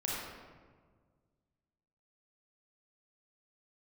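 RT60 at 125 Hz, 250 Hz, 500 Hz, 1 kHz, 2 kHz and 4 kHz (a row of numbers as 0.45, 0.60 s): 2.4, 2.0, 1.8, 1.5, 1.2, 0.85 s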